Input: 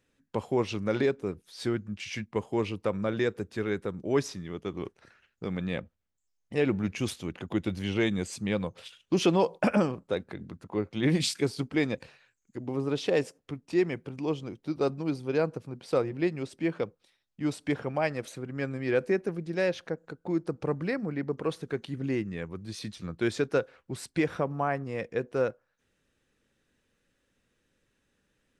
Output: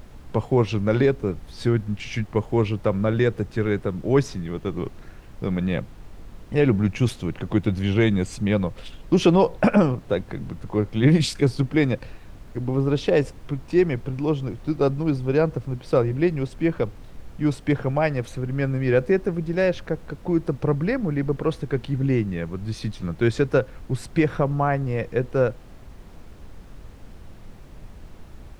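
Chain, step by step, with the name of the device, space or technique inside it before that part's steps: car interior (peaking EQ 120 Hz +8 dB 0.76 oct; treble shelf 3.5 kHz -7 dB; brown noise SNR 16 dB); trim +6.5 dB

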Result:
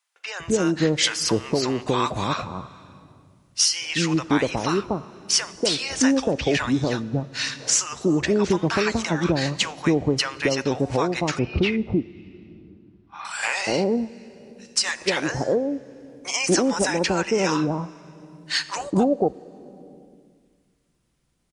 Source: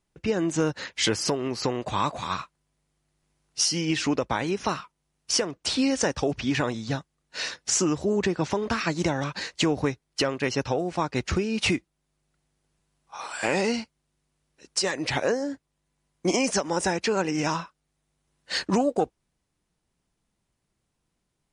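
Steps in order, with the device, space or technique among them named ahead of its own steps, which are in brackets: compressed reverb return (on a send at -3.5 dB: reverberation RT60 1.5 s, pre-delay 5 ms + compression 5:1, threshold -40 dBFS, peak gain reduction 19 dB); 11.39–13.25 s: on the sum: distance through air 320 m; bands offset in time highs, lows 240 ms, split 840 Hz; trim +4.5 dB

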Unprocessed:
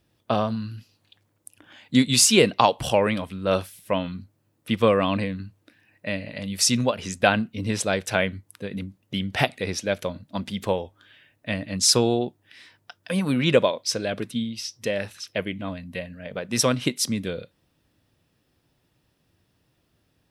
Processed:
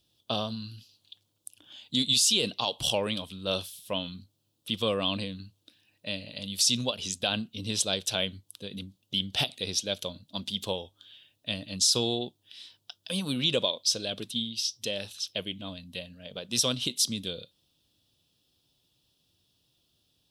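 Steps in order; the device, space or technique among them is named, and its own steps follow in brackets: over-bright horn tweeter (resonant high shelf 2.6 kHz +9 dB, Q 3; peak limiter -5 dBFS, peak gain reduction 11 dB); trim -8.5 dB

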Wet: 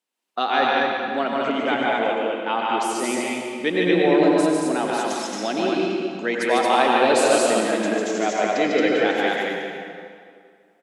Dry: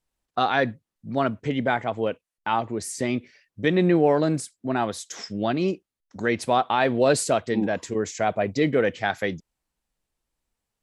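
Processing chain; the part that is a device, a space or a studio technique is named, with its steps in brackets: stadium PA (high-pass 230 Hz 24 dB/octave; peaking EQ 2.9 kHz +5 dB 0.68 oct; loudspeakers at several distances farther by 51 m -3 dB, 77 m -2 dB; reverberation RT60 2.2 s, pre-delay 80 ms, DRR 1 dB); trim -1.5 dB

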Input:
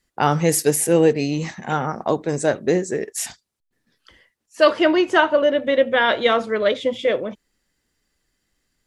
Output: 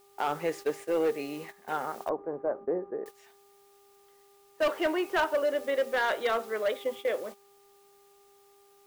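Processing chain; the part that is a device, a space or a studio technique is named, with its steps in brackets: aircraft radio (band-pass 390–2700 Hz; hard clipper -13 dBFS, distortion -14 dB; mains buzz 400 Hz, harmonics 3, -41 dBFS -6 dB/octave; white noise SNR 22 dB; gate -32 dBFS, range -12 dB); 2.09–3.06 s: low-pass 1.2 kHz 24 dB/octave; trim -8.5 dB

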